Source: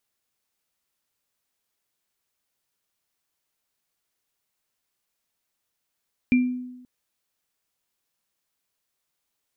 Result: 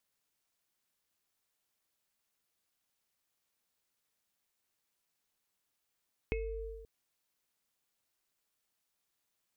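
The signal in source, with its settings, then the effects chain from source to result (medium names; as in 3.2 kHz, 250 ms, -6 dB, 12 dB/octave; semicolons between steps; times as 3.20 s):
sine partials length 0.53 s, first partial 250 Hz, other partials 2.37 kHz, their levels -8.5 dB, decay 0.97 s, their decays 0.30 s, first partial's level -13.5 dB
compression 10:1, threshold -31 dBFS; ring modulator 200 Hz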